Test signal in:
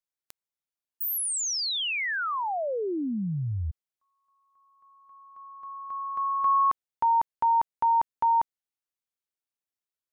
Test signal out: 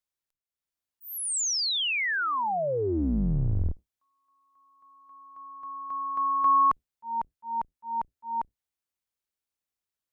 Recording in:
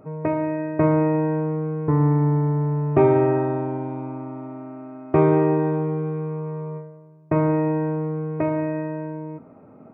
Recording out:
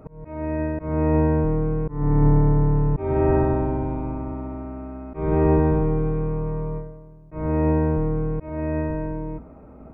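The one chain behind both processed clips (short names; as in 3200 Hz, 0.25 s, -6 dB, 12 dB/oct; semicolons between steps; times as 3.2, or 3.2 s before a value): octaver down 2 oct, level 0 dB; auto swell 0.382 s; gain +1.5 dB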